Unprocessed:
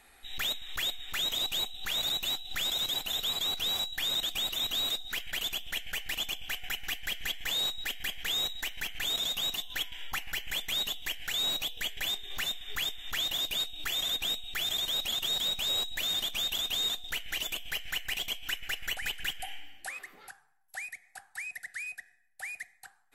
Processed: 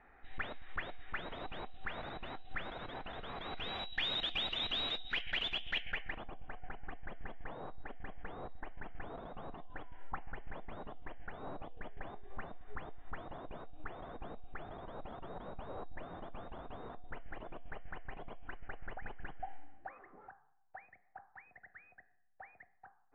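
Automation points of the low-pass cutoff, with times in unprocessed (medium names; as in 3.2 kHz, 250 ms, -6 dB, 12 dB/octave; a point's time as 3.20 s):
low-pass 24 dB/octave
3.27 s 1.8 kHz
4.02 s 3.2 kHz
5.77 s 3.2 kHz
6.31 s 1.2 kHz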